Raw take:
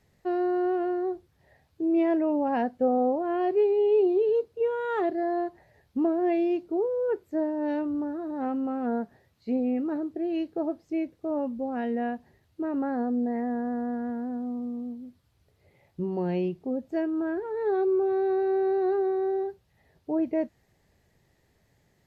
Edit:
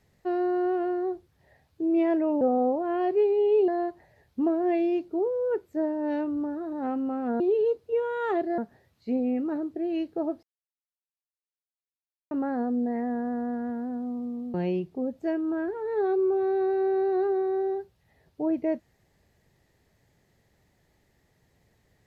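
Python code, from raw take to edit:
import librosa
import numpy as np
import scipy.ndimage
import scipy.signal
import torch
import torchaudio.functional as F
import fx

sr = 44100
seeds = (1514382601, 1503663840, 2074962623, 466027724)

y = fx.edit(x, sr, fx.cut(start_s=2.41, length_s=0.4),
    fx.move(start_s=4.08, length_s=1.18, to_s=8.98),
    fx.silence(start_s=10.83, length_s=1.88),
    fx.cut(start_s=14.94, length_s=1.29), tone=tone)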